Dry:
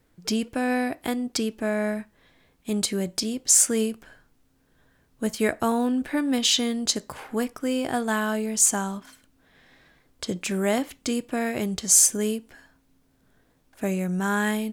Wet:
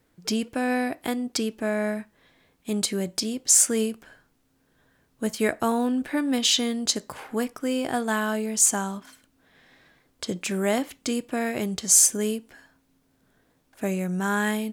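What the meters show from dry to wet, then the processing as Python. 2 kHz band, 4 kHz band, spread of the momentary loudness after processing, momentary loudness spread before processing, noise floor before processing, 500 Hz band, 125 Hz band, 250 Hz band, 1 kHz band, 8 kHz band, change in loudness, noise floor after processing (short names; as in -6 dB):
0.0 dB, 0.0 dB, 14 LU, 13 LU, -65 dBFS, 0.0 dB, -1.0 dB, -0.5 dB, 0.0 dB, 0.0 dB, 0.0 dB, -67 dBFS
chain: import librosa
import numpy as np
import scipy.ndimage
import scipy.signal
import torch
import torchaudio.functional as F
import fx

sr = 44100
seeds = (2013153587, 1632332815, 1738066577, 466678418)

y = fx.low_shelf(x, sr, hz=65.0, db=-9.5)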